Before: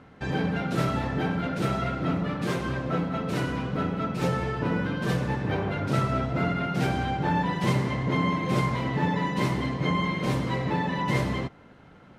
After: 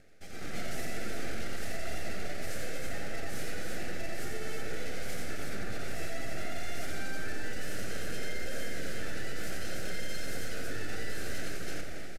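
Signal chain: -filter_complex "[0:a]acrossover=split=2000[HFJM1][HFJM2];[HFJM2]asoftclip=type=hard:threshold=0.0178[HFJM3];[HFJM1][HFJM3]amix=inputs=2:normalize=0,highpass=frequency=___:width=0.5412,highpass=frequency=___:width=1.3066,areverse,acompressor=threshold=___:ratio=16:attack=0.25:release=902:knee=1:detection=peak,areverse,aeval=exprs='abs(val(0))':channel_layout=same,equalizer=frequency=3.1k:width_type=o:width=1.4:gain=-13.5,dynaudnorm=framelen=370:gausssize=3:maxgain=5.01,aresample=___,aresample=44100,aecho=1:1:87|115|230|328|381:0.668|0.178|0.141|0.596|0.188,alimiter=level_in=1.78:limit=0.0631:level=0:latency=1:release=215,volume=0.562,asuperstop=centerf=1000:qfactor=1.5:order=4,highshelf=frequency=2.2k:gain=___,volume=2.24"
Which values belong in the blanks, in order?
470, 470, 0.0112, 32000, 3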